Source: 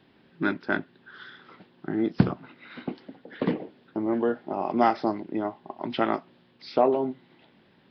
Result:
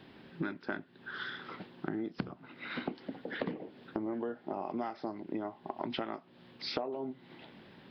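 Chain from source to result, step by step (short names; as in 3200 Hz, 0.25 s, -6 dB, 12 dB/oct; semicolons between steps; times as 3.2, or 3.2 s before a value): compressor 16:1, threshold -38 dBFS, peak gain reduction 26 dB; gain +5 dB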